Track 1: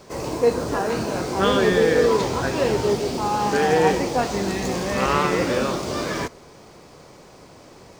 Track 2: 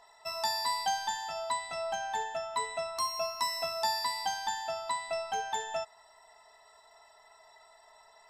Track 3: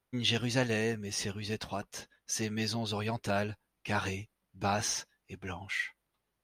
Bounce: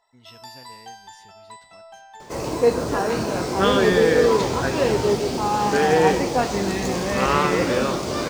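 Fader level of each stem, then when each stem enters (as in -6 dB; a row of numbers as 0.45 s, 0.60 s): +1.0 dB, -10.0 dB, -19.0 dB; 2.20 s, 0.00 s, 0.00 s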